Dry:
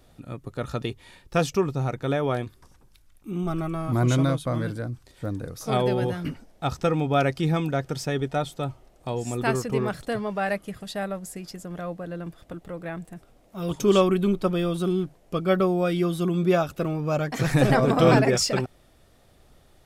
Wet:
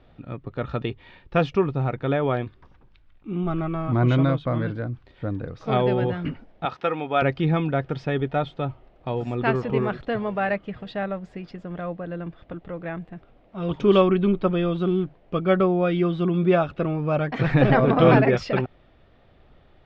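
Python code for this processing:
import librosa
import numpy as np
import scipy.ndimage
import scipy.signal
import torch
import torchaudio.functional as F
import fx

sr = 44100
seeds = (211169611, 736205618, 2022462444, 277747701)

y = fx.weighting(x, sr, curve='A', at=(6.65, 7.22))
y = fx.echo_throw(y, sr, start_s=8.64, length_s=0.77, ms=560, feedback_pct=40, wet_db=-11.5)
y = scipy.signal.sosfilt(scipy.signal.butter(4, 3300.0, 'lowpass', fs=sr, output='sos'), y)
y = y * 10.0 ** (2.0 / 20.0)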